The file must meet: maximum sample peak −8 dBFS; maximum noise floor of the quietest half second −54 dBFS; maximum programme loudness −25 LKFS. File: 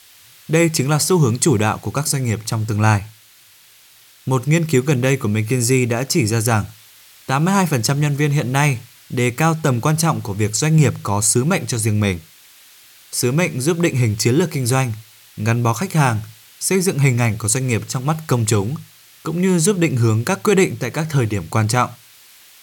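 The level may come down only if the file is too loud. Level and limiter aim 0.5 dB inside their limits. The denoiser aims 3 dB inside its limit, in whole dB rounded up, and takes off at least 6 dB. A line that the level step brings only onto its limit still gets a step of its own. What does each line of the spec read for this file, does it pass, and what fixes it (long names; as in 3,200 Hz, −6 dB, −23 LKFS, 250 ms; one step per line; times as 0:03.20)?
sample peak −3.5 dBFS: out of spec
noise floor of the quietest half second −49 dBFS: out of spec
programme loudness −18.0 LKFS: out of spec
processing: level −7.5 dB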